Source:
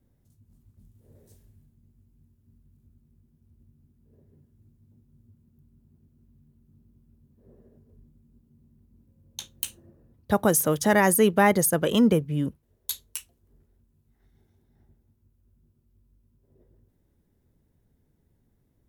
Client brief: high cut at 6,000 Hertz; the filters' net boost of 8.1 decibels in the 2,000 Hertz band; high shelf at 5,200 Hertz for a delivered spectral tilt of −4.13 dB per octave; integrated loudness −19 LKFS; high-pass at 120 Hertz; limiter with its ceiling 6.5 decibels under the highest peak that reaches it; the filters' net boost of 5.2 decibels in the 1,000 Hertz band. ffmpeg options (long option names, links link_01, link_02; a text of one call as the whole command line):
ffmpeg -i in.wav -af "highpass=120,lowpass=6000,equalizer=frequency=1000:width_type=o:gain=5,equalizer=frequency=2000:width_type=o:gain=8.5,highshelf=frequency=5200:gain=-5,volume=4dB,alimiter=limit=-3.5dB:level=0:latency=1" out.wav